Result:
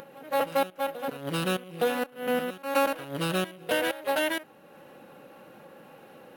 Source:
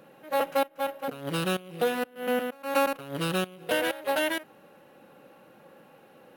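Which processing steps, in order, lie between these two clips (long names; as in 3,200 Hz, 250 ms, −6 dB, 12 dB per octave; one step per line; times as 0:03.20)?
backwards echo 866 ms −16 dB
upward compression, threshold −43 dBFS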